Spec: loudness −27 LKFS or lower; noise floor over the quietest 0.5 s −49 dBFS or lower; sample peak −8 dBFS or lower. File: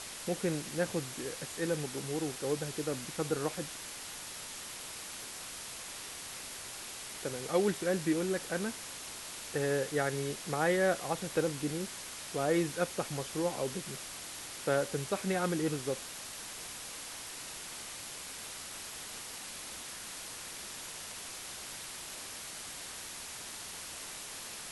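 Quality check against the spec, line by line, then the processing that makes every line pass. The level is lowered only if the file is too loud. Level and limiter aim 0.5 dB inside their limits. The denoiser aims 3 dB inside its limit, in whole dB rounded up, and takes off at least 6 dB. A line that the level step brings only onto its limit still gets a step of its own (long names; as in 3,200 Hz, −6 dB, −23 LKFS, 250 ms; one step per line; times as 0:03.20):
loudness −36.5 LKFS: in spec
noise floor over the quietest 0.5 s −44 dBFS: out of spec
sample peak −17.0 dBFS: in spec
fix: broadband denoise 8 dB, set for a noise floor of −44 dBFS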